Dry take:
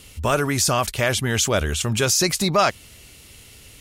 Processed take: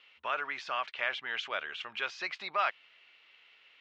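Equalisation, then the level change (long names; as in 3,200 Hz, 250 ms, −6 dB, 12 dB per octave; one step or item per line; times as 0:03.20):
high-pass filter 1,100 Hz 12 dB per octave
inverse Chebyshev low-pass filter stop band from 11,000 Hz, stop band 70 dB
−7.0 dB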